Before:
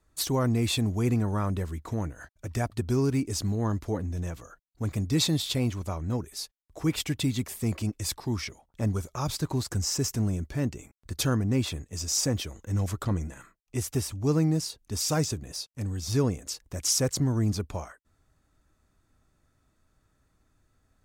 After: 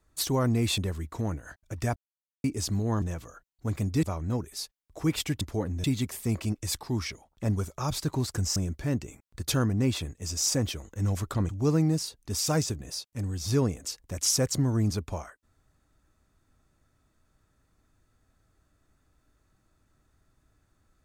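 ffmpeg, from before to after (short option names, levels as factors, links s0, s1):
-filter_complex "[0:a]asplit=10[s0][s1][s2][s3][s4][s5][s6][s7][s8][s9];[s0]atrim=end=0.782[s10];[s1]atrim=start=1.508:end=2.69,asetpts=PTS-STARTPTS,afade=t=out:st=1.178:d=0.004:c=hsin[s11];[s2]atrim=start=2.69:end=3.17,asetpts=PTS-STARTPTS,volume=0[s12];[s3]atrim=start=3.17:end=3.752,asetpts=PTS-STARTPTS,afade=t=in:d=0.004:c=hsin[s13];[s4]atrim=start=4.178:end=5.192[s14];[s5]atrim=start=5.828:end=7.212[s15];[s6]atrim=start=3.748:end=4.182[s16];[s7]atrim=start=7.208:end=9.932[s17];[s8]atrim=start=10.268:end=13.202[s18];[s9]atrim=start=14.108[s19];[s11][s12][s13]concat=n=3:v=0:a=1[s20];[s10][s20]acrossfade=d=0.004:c1=hsin:c2=hsin[s21];[s21][s14]acrossfade=d=0.004:c1=hsin:c2=hsin[s22];[s22][s15]acrossfade=d=0.004:c1=hsin:c2=hsin[s23];[s23][s16]acrossfade=d=0.004:c1=hsin:c2=hsin[s24];[s24][s17]acrossfade=d=0.004:c1=hsin:c2=hsin[s25];[s25][s18]acrossfade=d=0.004:c1=hsin:c2=hsin[s26];[s26][s19]acrossfade=d=0.004:c1=hsin:c2=hsin"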